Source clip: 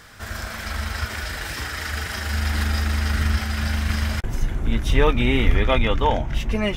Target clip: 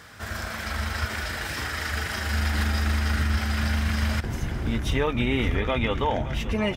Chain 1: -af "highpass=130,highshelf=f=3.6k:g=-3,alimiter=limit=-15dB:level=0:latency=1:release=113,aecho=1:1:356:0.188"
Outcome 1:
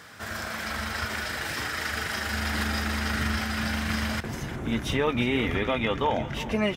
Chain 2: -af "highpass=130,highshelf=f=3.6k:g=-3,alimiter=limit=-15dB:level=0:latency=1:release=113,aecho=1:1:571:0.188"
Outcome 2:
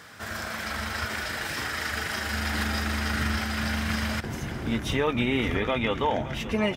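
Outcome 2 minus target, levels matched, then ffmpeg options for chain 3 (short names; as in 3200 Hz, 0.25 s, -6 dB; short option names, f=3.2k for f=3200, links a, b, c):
125 Hz band -4.5 dB
-af "highpass=62,highshelf=f=3.6k:g=-3,alimiter=limit=-15dB:level=0:latency=1:release=113,aecho=1:1:571:0.188"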